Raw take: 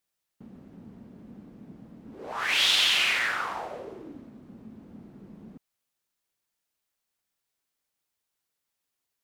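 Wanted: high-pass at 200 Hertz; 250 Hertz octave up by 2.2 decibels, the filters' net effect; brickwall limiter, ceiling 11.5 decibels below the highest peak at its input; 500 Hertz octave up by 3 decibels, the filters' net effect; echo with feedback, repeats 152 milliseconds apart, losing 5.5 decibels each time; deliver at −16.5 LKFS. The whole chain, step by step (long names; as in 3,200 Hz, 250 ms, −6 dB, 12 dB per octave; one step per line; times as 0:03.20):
high-pass filter 200 Hz
parametric band 250 Hz +4 dB
parametric band 500 Hz +3 dB
brickwall limiter −21 dBFS
repeating echo 152 ms, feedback 53%, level −5.5 dB
level +13 dB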